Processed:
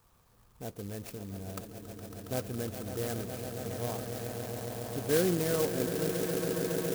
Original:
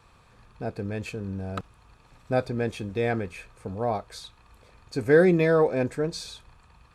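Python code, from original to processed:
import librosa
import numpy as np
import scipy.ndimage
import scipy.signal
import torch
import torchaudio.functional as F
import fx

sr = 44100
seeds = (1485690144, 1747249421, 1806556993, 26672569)

y = fx.echo_swell(x, sr, ms=138, loudest=8, wet_db=-10.5)
y = fx.dynamic_eq(y, sr, hz=780.0, q=1.4, threshold_db=-32.0, ratio=4.0, max_db=-4)
y = fx.clock_jitter(y, sr, seeds[0], jitter_ms=0.11)
y = y * librosa.db_to_amplitude(-8.5)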